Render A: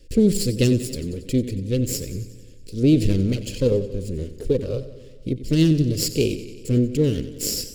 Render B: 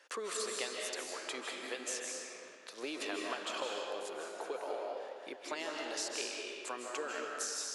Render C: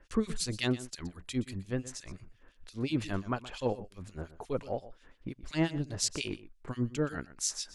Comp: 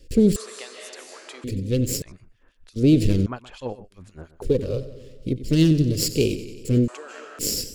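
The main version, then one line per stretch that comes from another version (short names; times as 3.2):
A
0.36–1.44 from B
2.02–2.76 from C
3.26–4.42 from C
6.88–7.39 from B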